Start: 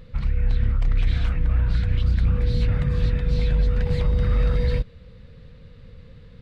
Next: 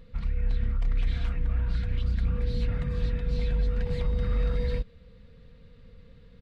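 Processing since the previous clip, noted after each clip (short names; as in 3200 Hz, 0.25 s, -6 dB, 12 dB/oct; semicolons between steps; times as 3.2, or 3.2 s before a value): comb 4.3 ms, depth 34%; gain -7 dB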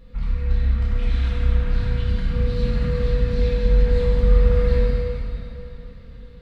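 plate-style reverb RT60 3.4 s, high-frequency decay 0.8×, DRR -7 dB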